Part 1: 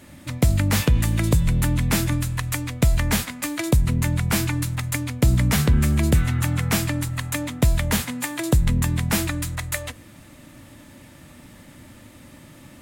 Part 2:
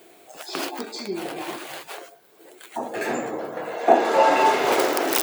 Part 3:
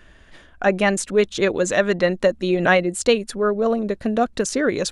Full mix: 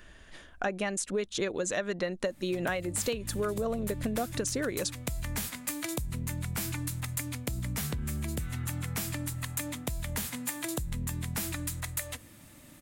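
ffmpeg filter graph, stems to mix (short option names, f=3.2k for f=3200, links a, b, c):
-filter_complex "[0:a]acompressor=threshold=-22dB:ratio=6,adelay=2250,volume=-8.5dB[a];[2:a]volume=-4dB[b];[a][b]amix=inputs=2:normalize=0,highshelf=f=6k:g=9,acompressor=threshold=-28dB:ratio=8"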